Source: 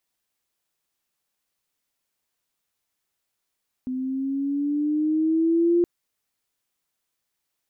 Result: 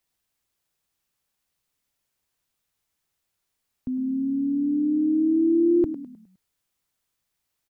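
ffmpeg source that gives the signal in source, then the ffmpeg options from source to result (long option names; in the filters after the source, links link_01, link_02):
-f lavfi -i "aevalsrc='pow(10,(-15.5+10*(t/1.97-1))/20)*sin(2*PI*254*1.97/(5.5*log(2)/12)*(exp(5.5*log(2)/12*t/1.97)-1))':duration=1.97:sample_rate=44100"
-filter_complex "[0:a]acrossover=split=160[link_01][link_02];[link_01]acontrast=89[link_03];[link_02]asplit=6[link_04][link_05][link_06][link_07][link_08][link_09];[link_05]adelay=103,afreqshift=-32,volume=-10.5dB[link_10];[link_06]adelay=206,afreqshift=-64,volume=-17.8dB[link_11];[link_07]adelay=309,afreqshift=-96,volume=-25.2dB[link_12];[link_08]adelay=412,afreqshift=-128,volume=-32.5dB[link_13];[link_09]adelay=515,afreqshift=-160,volume=-39.8dB[link_14];[link_04][link_10][link_11][link_12][link_13][link_14]amix=inputs=6:normalize=0[link_15];[link_03][link_15]amix=inputs=2:normalize=0"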